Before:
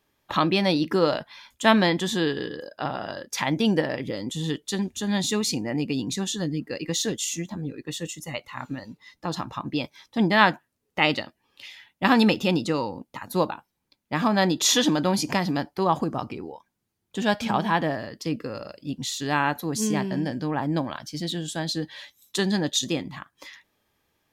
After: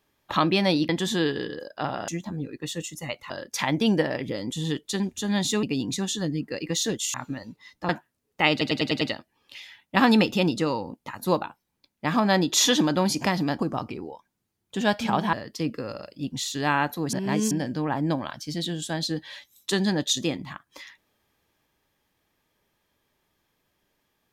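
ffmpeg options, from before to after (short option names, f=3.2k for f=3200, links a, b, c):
-filter_complex "[0:a]asplit=16[a][b][c][d][e][f][g][h][i][j][k][l][m][n][o][p];[a]atrim=end=0.892[q];[b]atrim=start=1.898:end=3.092[r];[c]atrim=start=7.328:end=8.552[s];[d]atrim=start=3.088:end=5.422[t];[e]atrim=start=5.818:end=7.332[u];[f]atrim=start=8.548:end=9.302[v];[g]atrim=start=10.468:end=11.192[w];[h]atrim=start=11.088:end=11.192[x];[i]atrim=start=11.088:end=11.192[y];[j]atrim=start=11.088:end=11.192[z];[k]atrim=start=11.088:end=11.192[aa];[l]atrim=start=11.088:end=15.672[ab];[m]atrim=start=15.998:end=17.742[ac];[n]atrim=start=17.988:end=19.792[ad];[o]atrim=start=19.788:end=20.172,asetpts=PTS-STARTPTS,areverse[ae];[p]atrim=start=20.168[af];[q][r]acrossfade=d=0.004:c1=hsin:c2=hsin[ag];[ag][s]acrossfade=d=0.004:c1=hsin:c2=hsin[ah];[ah][t]acrossfade=d=0.004:c1=hsin:c2=hsin[ai];[ai][u]acrossfade=d=0.004:c1=hsin:c2=hsin[aj];[aj][v]acrossfade=d=0.004:c1=hsin:c2=hsin[ak];[ak][w]acrossfade=d=0.004:c1=hsin:c2=hsin[al];[al][x]acrossfade=d=0.004:c1=hsin:c2=hsin[am];[am][y]acrossfade=d=0.004:c1=hsin:c2=hsin[an];[an][z]acrossfade=d=0.004:c1=hsin:c2=hsin[ao];[ao][aa]acrossfade=d=0.004:c1=hsin:c2=hsin[ap];[ap][ab]acrossfade=d=0.004:c1=hsin:c2=hsin[aq];[aq][ac]acrossfade=d=0.004:c1=hsin:c2=hsin[ar];[ar][ad]acrossfade=d=0.004:c1=hsin:c2=hsin[as];[as][ae]acrossfade=d=0.004:c1=hsin:c2=hsin[at];[at][af]acrossfade=d=0.004:c1=hsin:c2=hsin"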